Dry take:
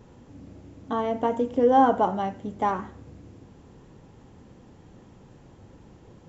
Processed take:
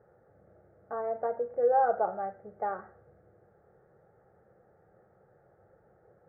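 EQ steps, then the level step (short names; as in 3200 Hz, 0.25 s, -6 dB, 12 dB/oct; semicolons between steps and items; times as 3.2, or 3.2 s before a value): HPF 600 Hz 6 dB/oct; inverse Chebyshev low-pass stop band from 2900 Hz, stop band 40 dB; fixed phaser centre 1000 Hz, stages 6; 0.0 dB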